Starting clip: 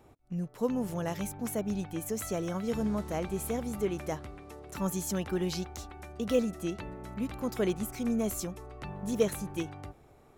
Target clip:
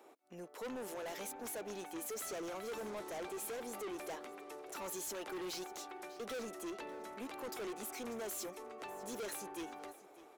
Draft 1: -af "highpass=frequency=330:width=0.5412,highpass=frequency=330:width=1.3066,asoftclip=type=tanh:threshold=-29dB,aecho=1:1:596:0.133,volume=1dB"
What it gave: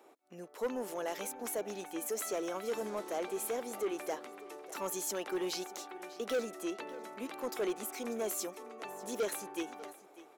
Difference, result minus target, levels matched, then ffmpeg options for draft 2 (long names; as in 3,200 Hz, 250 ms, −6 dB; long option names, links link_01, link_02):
soft clipping: distortion −7 dB
-af "highpass=frequency=330:width=0.5412,highpass=frequency=330:width=1.3066,asoftclip=type=tanh:threshold=-41dB,aecho=1:1:596:0.133,volume=1dB"